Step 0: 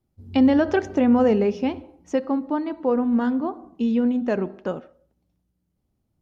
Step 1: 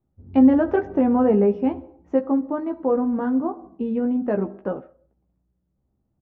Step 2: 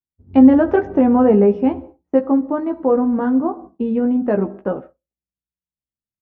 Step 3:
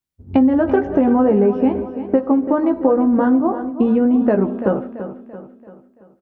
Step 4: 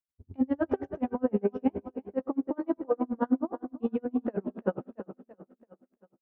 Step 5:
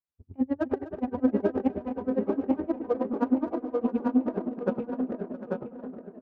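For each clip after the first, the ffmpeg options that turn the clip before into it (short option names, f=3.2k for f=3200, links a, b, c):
-filter_complex "[0:a]lowpass=1.3k,asplit=2[a][b];[b]adelay=15,volume=-5.5dB[c];[a][c]amix=inputs=2:normalize=0"
-af "agate=range=-33dB:threshold=-37dB:ratio=3:detection=peak,volume=5dB"
-filter_complex "[0:a]acompressor=threshold=-20dB:ratio=5,asplit=2[a][b];[b]aecho=0:1:337|674|1011|1348|1685:0.266|0.125|0.0588|0.0276|0.013[c];[a][c]amix=inputs=2:normalize=0,volume=7.5dB"
-af "bandreject=f=60:t=h:w=6,bandreject=f=120:t=h:w=6,bandreject=f=180:t=h:w=6,bandreject=f=240:t=h:w=6,aeval=exprs='val(0)*pow(10,-37*(0.5-0.5*cos(2*PI*9.6*n/s))/20)':c=same,volume=-7dB"
-filter_complex "[0:a]asplit=2[a][b];[b]aecho=0:1:863|1726|2589:0.355|0.0887|0.0222[c];[a][c]amix=inputs=2:normalize=0,adynamicsmooth=sensitivity=8:basefreq=1.9k,asplit=2[d][e];[e]aecho=0:1:249|665|751|840:0.158|0.133|0.15|0.668[f];[d][f]amix=inputs=2:normalize=0"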